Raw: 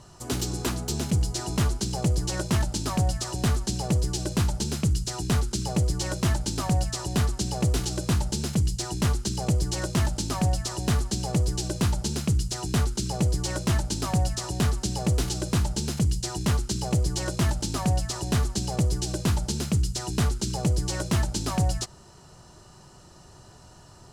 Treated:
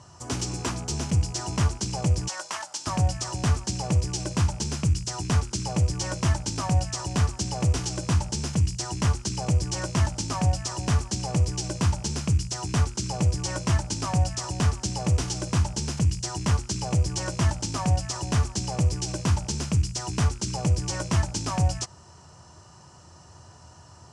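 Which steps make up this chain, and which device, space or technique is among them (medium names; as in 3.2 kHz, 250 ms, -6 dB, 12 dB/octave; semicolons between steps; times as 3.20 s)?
2.28–2.87 s: Chebyshev high-pass 910 Hz, order 2; car door speaker with a rattle (rattle on loud lows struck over -33 dBFS, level -39 dBFS; cabinet simulation 82–9000 Hz, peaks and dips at 85 Hz +10 dB, 220 Hz -4 dB, 390 Hz -5 dB, 1 kHz +4 dB, 3.9 kHz -6 dB, 5.7 kHz +4 dB)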